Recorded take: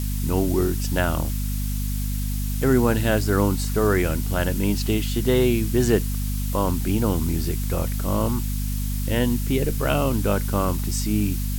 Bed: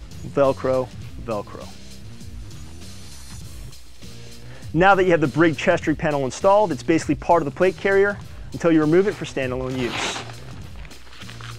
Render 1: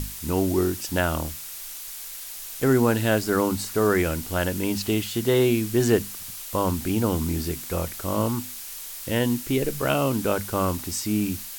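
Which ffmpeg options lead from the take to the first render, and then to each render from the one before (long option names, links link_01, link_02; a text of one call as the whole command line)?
ffmpeg -i in.wav -af "bandreject=frequency=50:width_type=h:width=6,bandreject=frequency=100:width_type=h:width=6,bandreject=frequency=150:width_type=h:width=6,bandreject=frequency=200:width_type=h:width=6,bandreject=frequency=250:width_type=h:width=6" out.wav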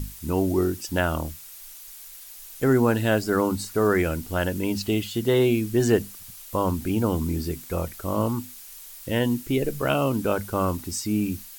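ffmpeg -i in.wav -af "afftdn=noise_reduction=8:noise_floor=-37" out.wav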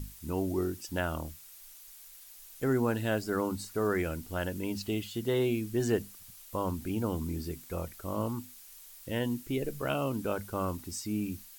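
ffmpeg -i in.wav -af "volume=-8.5dB" out.wav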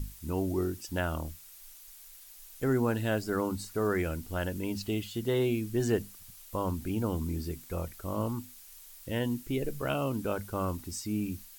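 ffmpeg -i in.wav -af "lowshelf=frequency=73:gain=6.5" out.wav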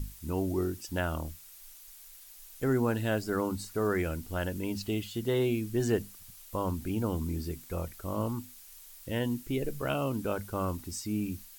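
ffmpeg -i in.wav -af anull out.wav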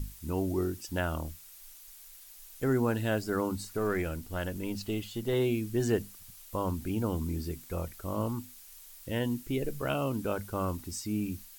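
ffmpeg -i in.wav -filter_complex "[0:a]asettb=1/sr,asplit=3[link_01][link_02][link_03];[link_01]atrim=end=3.774[link_04];[link_02]atrim=start=3.77:end=5.33,asetpts=PTS-STARTPTS,afade=type=in:duration=0.004:curve=qsin,afade=type=out:start_time=1.556:duration=0.004:curve=qsin,aeval=exprs='if(lt(val(0),0),0.708*val(0),val(0))':channel_layout=same[link_05];[link_03]atrim=start=5.326[link_06];[link_04][link_05]acrossfade=duration=0.004:curve1=hsin:curve2=qsin[link_07];[link_07][link_06]acrossfade=duration=0.004:curve1=qsin:curve2=hsin" out.wav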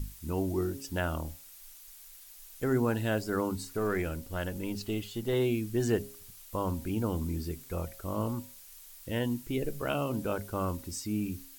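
ffmpeg -i in.wav -af "bandreject=frequency=136.7:width_type=h:width=4,bandreject=frequency=273.4:width_type=h:width=4,bandreject=frequency=410.1:width_type=h:width=4,bandreject=frequency=546.8:width_type=h:width=4,bandreject=frequency=683.5:width_type=h:width=4,bandreject=frequency=820.2:width_type=h:width=4,bandreject=frequency=956.9:width_type=h:width=4" out.wav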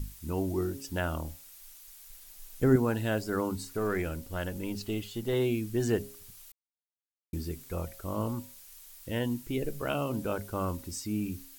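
ffmpeg -i in.wav -filter_complex "[0:a]asettb=1/sr,asplit=3[link_01][link_02][link_03];[link_01]atrim=end=2.104[link_04];[link_02]atrim=start=2.1:end=2.76,asetpts=PTS-STARTPTS,afade=type=in:duration=0.004:curve=qsin,afade=type=out:start_time=0.656:duration=0.004:curve=qsin,lowshelf=frequency=450:gain=9[link_05];[link_03]atrim=start=2.756[link_06];[link_04][link_05]acrossfade=duration=0.004:curve1=hsin:curve2=qsin[link_07];[link_07][link_06]acrossfade=duration=0.004:curve1=qsin:curve2=hsin,asplit=3[link_08][link_09][link_10];[link_08]atrim=end=6.52,asetpts=PTS-STARTPTS,afade=type=out:start_time=6.516:duration=0.004:curve=hsin[link_11];[link_09]atrim=start=6.52:end=7.33,asetpts=PTS-STARTPTS,volume=0[link_12];[link_10]atrim=start=7.33,asetpts=PTS-STARTPTS,afade=type=in:duration=0.004:curve=hsin[link_13];[link_11][link_12][link_13]concat=n=3:v=0:a=1" out.wav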